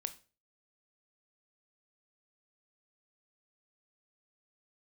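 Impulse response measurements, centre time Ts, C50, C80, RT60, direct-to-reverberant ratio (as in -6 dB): 5 ms, 15.5 dB, 21.0 dB, 0.35 s, 10.0 dB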